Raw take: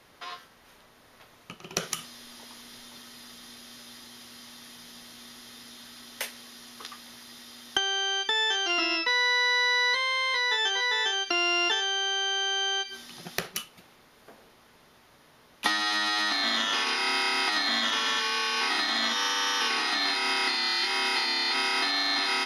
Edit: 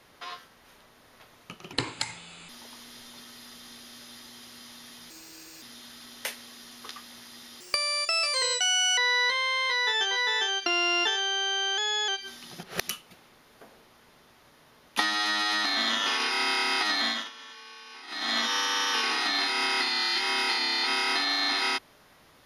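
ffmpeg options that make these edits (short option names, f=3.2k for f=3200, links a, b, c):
-filter_complex "[0:a]asplit=13[a][b][c][d][e][f][g][h][i][j][k][l][m];[a]atrim=end=1.734[n];[b]atrim=start=1.73:end=2.27,asetpts=PTS-STARTPTS,asetrate=31311,aresample=44100[o];[c]atrim=start=2.266:end=4.884[p];[d]atrim=start=4.88:end=5.58,asetpts=PTS-STARTPTS,asetrate=59094,aresample=44100,atrim=end_sample=23037,asetpts=PTS-STARTPTS[q];[e]atrim=start=5.576:end=7.564[r];[f]atrim=start=7.56:end=9.62,asetpts=PTS-STARTPTS,asetrate=66150,aresample=44100[s];[g]atrim=start=9.616:end=12.424[t];[h]atrim=start=12.42:end=12.75,asetpts=PTS-STARTPTS,asetrate=47628,aresample=44100[u];[i]atrim=start=12.746:end=13.302[v];[j]atrim=start=13.298:end=13.552,asetpts=PTS-STARTPTS,areverse[w];[k]atrim=start=13.548:end=17.97,asetpts=PTS-STARTPTS,afade=t=out:st=4.162:d=0.26:silence=0.11885[x];[l]atrim=start=17.97:end=18.74,asetpts=PTS-STARTPTS,volume=-18.5dB[y];[m]atrim=start=18.74,asetpts=PTS-STARTPTS,afade=t=in:d=0.26:silence=0.11885[z];[n][o]acrossfade=d=0.004:c1=hsin:c2=hsin[aa];[aa][p]acrossfade=d=0.004:c1=hsin:c2=hsin[ab];[ab][q]acrossfade=d=0.004:c1=hsin:c2=hsin[ac];[ac][r]acrossfade=d=0.004:c1=hsin:c2=hsin[ad];[ad][s]acrossfade=d=0.004:c1=hsin:c2=hsin[ae];[ae][t]acrossfade=d=0.004:c1=hsin:c2=hsin[af];[af][u]acrossfade=d=0.004:c1=hsin:c2=hsin[ag];[ag][v]acrossfade=d=0.004:c1=hsin:c2=hsin[ah];[ah][w]acrossfade=d=0.004:c1=hsin:c2=hsin[ai];[x][y][z]concat=n=3:v=0:a=1[aj];[ai][aj]acrossfade=d=0.004:c1=hsin:c2=hsin"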